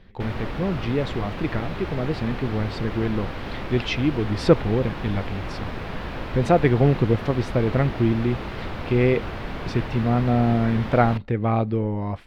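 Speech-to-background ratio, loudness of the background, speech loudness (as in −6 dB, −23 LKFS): 9.5 dB, −33.0 LKFS, −23.5 LKFS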